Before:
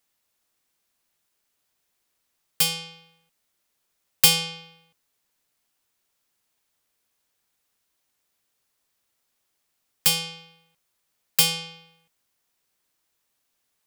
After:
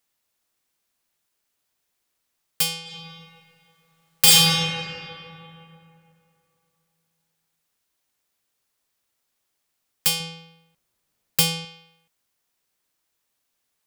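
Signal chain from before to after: 2.82–4.41 reverb throw, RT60 2.8 s, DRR -8.5 dB; 10.2–11.65 low shelf 480 Hz +8.5 dB; gain -1 dB

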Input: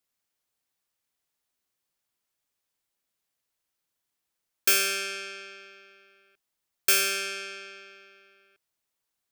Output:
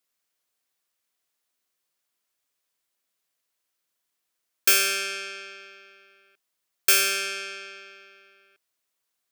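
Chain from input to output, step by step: low shelf 180 Hz -11 dB; notch 850 Hz, Q 12; gain +3 dB

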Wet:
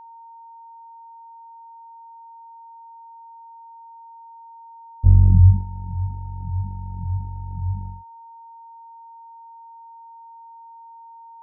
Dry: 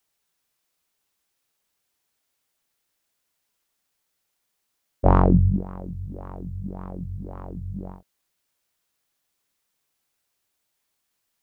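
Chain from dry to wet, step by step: low-pass sweep 100 Hz -> 540 Hz, 9.93–11.14; dynamic EQ 140 Hz, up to -5 dB, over -35 dBFS, Q 3.3; whine 920 Hz -43 dBFS; gain +2.5 dB

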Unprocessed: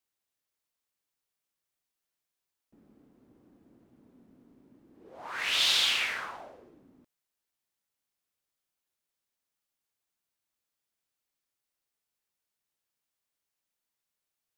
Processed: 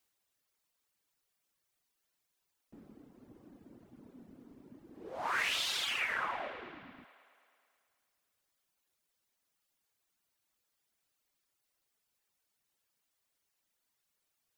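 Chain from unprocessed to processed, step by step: reverb removal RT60 1.1 s; band-limited delay 0.108 s, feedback 72%, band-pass 1000 Hz, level -14 dB; compressor 10:1, threshold -35 dBFS, peak gain reduction 12 dB; dynamic EQ 3800 Hz, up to -5 dB, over -53 dBFS, Q 1.2; gain +7 dB

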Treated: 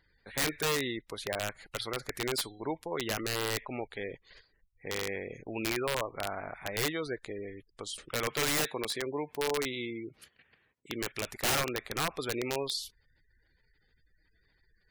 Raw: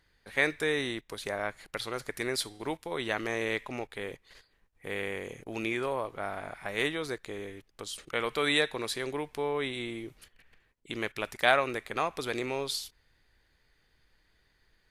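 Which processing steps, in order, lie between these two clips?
8.31–11.12 HPF 100 Hz 12 dB/oct; spectral gate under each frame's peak -20 dB strong; wrapped overs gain 22.5 dB

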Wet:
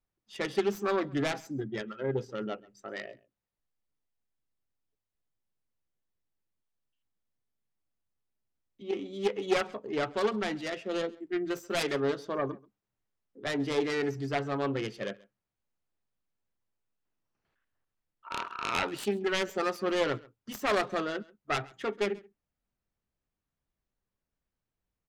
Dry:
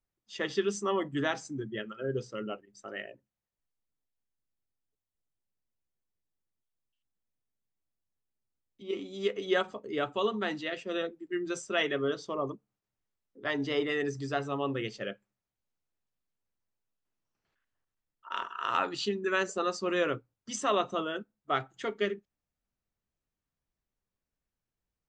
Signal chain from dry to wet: self-modulated delay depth 0.39 ms; high shelf 4400 Hz -9.5 dB; echo 0.134 s -23.5 dB; gain +2 dB

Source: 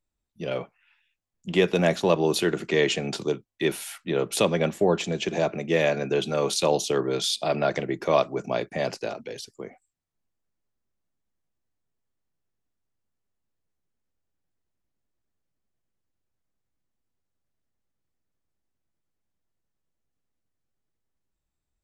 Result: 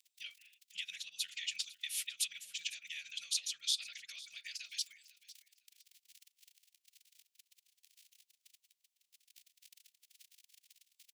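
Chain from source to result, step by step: crackle 16/s -38 dBFS; compressor 16:1, threshold -33 dBFS, peak gain reduction 18.5 dB; time stretch by phase-locked vocoder 0.51×; inverse Chebyshev high-pass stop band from 1000 Hz, stop band 50 dB; on a send: feedback echo 0.503 s, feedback 19%, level -18.5 dB; on the sum: gain +7.5 dB

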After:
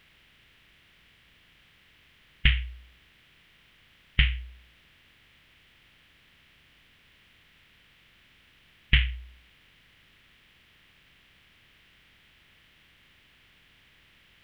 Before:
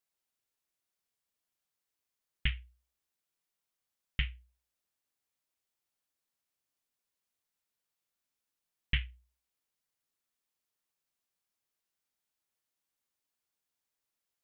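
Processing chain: per-bin compression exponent 0.6; gain +9 dB

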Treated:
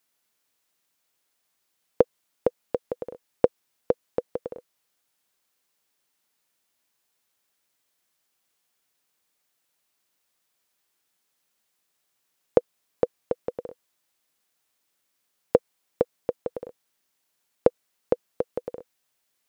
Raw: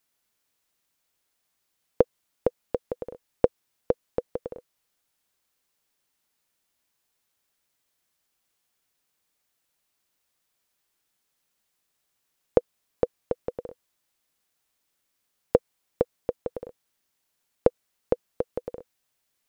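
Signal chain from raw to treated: low shelf 87 Hz -11.5 dB; gain +1.5 dB

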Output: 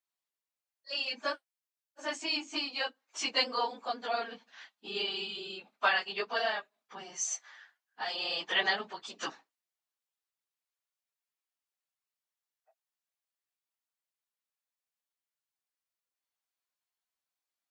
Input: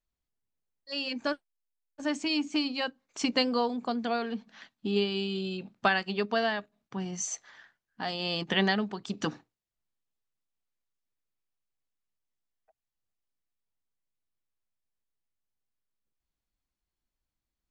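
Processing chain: phase scrambler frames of 50 ms; HPF 670 Hz 12 dB/oct

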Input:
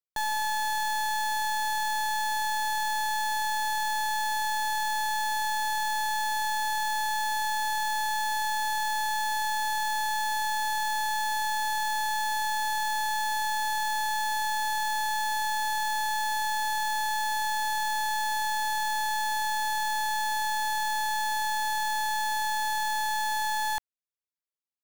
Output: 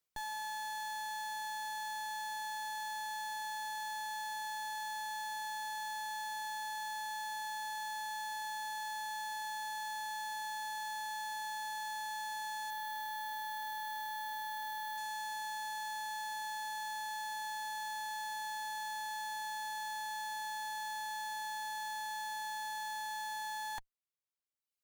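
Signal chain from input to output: reverb removal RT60 1.1 s; 12.7–14.98 bell 6700 Hz -13.5 dB 1.5 oct; tube stage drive 50 dB, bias 0.55; gain +10 dB

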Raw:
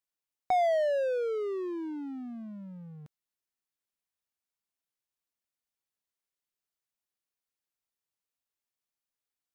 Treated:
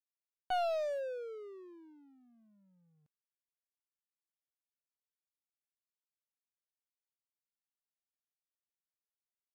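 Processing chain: one-sided fold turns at -24 dBFS; upward expander 2.5:1, over -39 dBFS; gain -5 dB

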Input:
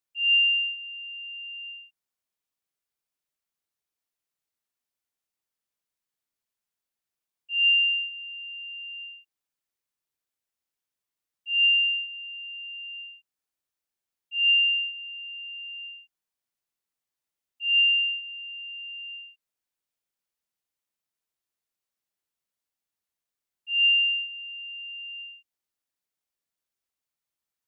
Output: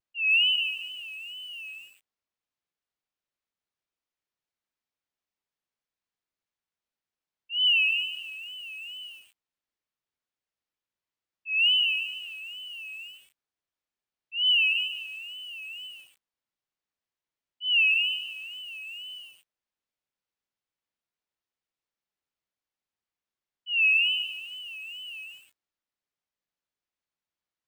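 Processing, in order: wow and flutter 140 cents; air absorption 110 m; lo-fi delay 0.146 s, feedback 35%, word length 8-bit, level -10 dB

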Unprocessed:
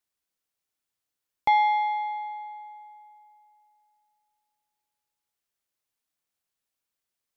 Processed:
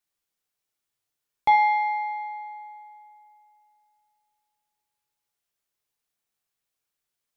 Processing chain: two-slope reverb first 0.51 s, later 1.9 s, from -24 dB, DRR 3.5 dB

